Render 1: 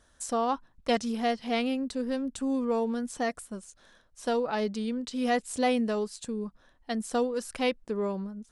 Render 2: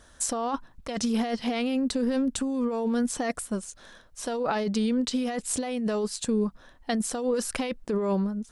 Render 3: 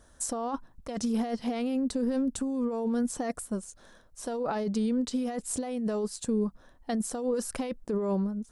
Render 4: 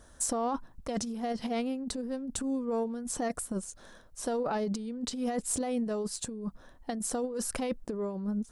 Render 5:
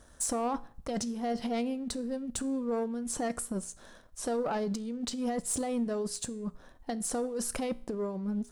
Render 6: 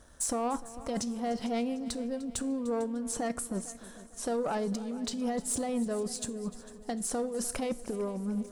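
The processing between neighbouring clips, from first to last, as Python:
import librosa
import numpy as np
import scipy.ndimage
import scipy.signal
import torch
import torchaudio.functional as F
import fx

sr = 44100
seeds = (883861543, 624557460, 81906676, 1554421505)

y1 = fx.over_compress(x, sr, threshold_db=-32.0, ratio=-1.0)
y1 = F.gain(torch.from_numpy(y1), 5.5).numpy()
y2 = fx.peak_eq(y1, sr, hz=2800.0, db=-8.0, octaves=2.2)
y2 = F.gain(torch.from_numpy(y2), -2.0).numpy()
y3 = fx.over_compress(y2, sr, threshold_db=-31.0, ratio=-0.5)
y3 = 10.0 ** (-17.5 / 20.0) * np.tanh(y3 / 10.0 ** (-17.5 / 20.0))
y4 = fx.leveller(y3, sr, passes=1)
y4 = fx.comb_fb(y4, sr, f0_hz=59.0, decay_s=0.48, harmonics='all', damping=0.0, mix_pct=40)
y5 = fx.echo_heads(y4, sr, ms=150, heads='second and third', feedback_pct=48, wet_db=-18.0)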